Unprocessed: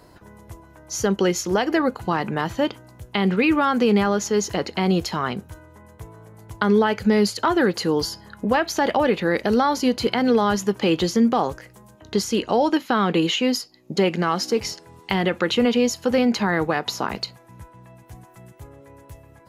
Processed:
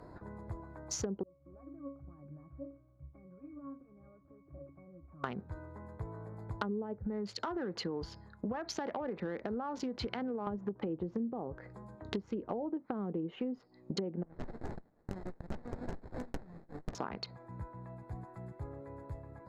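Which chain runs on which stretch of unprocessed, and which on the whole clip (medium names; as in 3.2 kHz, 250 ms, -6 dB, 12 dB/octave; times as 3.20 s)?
1.23–5.24 s: CVSD coder 16 kbps + compression 4:1, threshold -32 dBFS + pitch-class resonator C#, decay 0.35 s
6.98–10.47 s: compression 10:1, threshold -20 dBFS + three bands expanded up and down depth 100%
14.23–16.95 s: inverse Chebyshev high-pass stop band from 1.4 kHz + sample-rate reducer 8.3 kHz + sliding maximum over 33 samples
whole clip: local Wiener filter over 15 samples; low-pass that closes with the level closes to 530 Hz, closed at -17 dBFS; compression 6:1, threshold -34 dBFS; trim -1 dB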